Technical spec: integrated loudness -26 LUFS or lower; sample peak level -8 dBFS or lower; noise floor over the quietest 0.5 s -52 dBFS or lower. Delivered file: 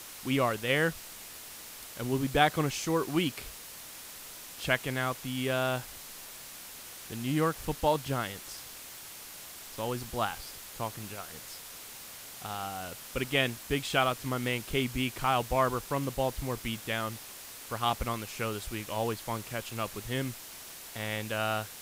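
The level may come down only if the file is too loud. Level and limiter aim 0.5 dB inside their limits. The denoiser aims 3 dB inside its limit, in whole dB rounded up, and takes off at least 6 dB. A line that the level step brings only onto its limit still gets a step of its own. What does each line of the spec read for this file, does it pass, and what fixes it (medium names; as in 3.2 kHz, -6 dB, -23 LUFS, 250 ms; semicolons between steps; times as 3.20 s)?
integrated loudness -32.0 LUFS: pass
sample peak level -9.5 dBFS: pass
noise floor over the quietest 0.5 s -46 dBFS: fail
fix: noise reduction 9 dB, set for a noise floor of -46 dBFS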